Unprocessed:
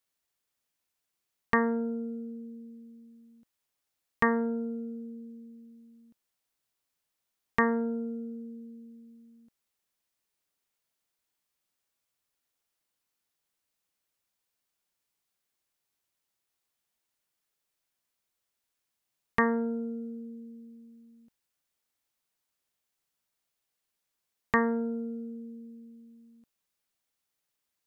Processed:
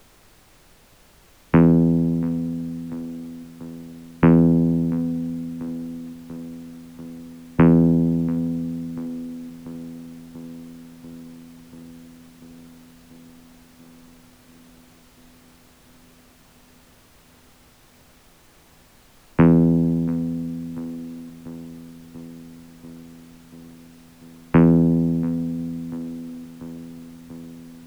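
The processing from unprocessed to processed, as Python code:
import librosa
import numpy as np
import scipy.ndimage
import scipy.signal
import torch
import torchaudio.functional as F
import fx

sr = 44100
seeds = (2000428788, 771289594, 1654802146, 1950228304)

p1 = fx.vocoder(x, sr, bands=8, carrier='saw', carrier_hz=83.2)
p2 = fx.dmg_noise_colour(p1, sr, seeds[0], colour='white', level_db=-57.0)
p3 = fx.tilt_eq(p2, sr, slope=-3.0)
p4 = p3 + fx.echo_filtered(p3, sr, ms=689, feedback_pct=77, hz=1600.0, wet_db=-19.0, dry=0)
y = p4 * librosa.db_to_amplitude(8.5)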